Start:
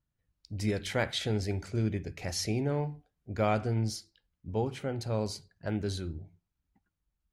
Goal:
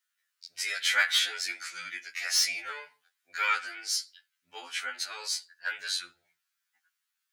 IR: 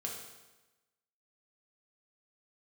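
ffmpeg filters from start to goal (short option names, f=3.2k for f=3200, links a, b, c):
-filter_complex "[0:a]asettb=1/sr,asplit=3[a][b][c];[a]atrim=end=1.464[d];[b]atrim=start=1.46:end=2.7,asetpts=PTS-STARTPTS,afade=t=in:d=0.004:c=qsin,afade=t=out:st=1.236:d=0.004:c=qsin,afreqshift=-51[e];[c]atrim=start=2.696[f];[d][e]acrossfade=d=0.004:c1=hsin:c2=qsin[g];[g][f]acrossfade=d=0.004:c1=qsin:c2=hsin,acrossover=split=2300[h][i];[i]aeval=exprs='0.0794*sin(PI/2*2*val(0)/0.0794)':c=same[j];[h][j]amix=inputs=2:normalize=0,highpass=f=1.5k:t=q:w=2.8,afftfilt=real='re*2*eq(mod(b,4),0)':imag='im*2*eq(mod(b,4),0)':win_size=2048:overlap=0.75,volume=3.5dB"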